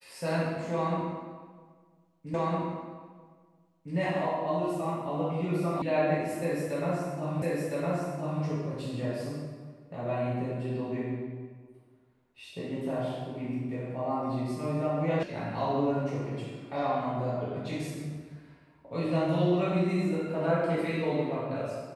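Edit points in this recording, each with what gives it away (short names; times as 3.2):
2.34 repeat of the last 1.61 s
5.82 sound cut off
7.42 repeat of the last 1.01 s
15.23 sound cut off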